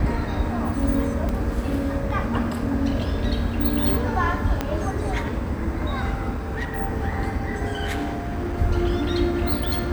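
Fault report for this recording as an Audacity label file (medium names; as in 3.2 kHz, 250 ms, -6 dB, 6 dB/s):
1.290000	1.290000	pop -15 dBFS
4.610000	4.610000	pop -9 dBFS
6.320000	6.810000	clipped -23 dBFS
7.850000	8.580000	clipped -22.5 dBFS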